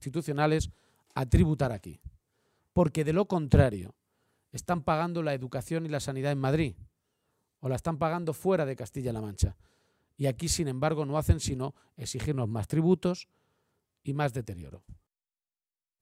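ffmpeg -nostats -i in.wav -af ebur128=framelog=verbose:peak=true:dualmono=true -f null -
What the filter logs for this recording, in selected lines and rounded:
Integrated loudness:
  I:         -26.8 LUFS
  Threshold: -37.6 LUFS
Loudness range:
  LRA:         3.9 LU
  Threshold: -48.0 LUFS
  LRA low:   -29.9 LUFS
  LRA high:  -26.0 LUFS
True peak:
  Peak:       -9.8 dBFS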